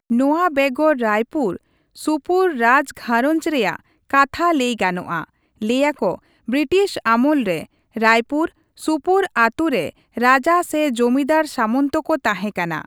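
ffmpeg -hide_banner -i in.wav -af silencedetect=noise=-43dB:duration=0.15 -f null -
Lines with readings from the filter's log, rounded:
silence_start: 1.57
silence_end: 1.96 | silence_duration: 0.38
silence_start: 3.80
silence_end: 4.09 | silence_duration: 0.29
silence_start: 5.25
silence_end: 5.61 | silence_duration: 0.36
silence_start: 6.19
silence_end: 6.48 | silence_duration: 0.29
silence_start: 7.66
silence_end: 7.95 | silence_duration: 0.29
silence_start: 8.50
silence_end: 8.77 | silence_duration: 0.28
silence_start: 9.90
silence_end: 10.16 | silence_duration: 0.25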